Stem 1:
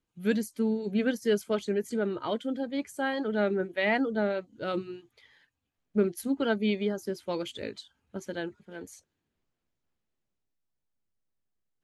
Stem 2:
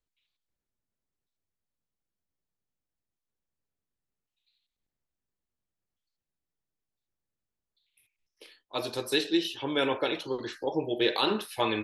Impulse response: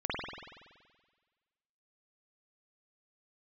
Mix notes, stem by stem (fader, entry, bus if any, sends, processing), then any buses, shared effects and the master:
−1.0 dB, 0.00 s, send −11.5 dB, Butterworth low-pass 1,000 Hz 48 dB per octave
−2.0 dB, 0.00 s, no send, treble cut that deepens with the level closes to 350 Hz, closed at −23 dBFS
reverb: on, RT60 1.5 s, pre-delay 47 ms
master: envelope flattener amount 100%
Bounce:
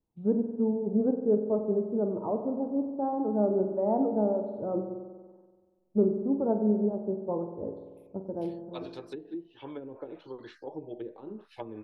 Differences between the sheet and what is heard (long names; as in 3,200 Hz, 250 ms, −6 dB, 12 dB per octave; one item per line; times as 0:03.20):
stem 2 −2.0 dB → −9.5 dB
master: missing envelope flattener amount 100%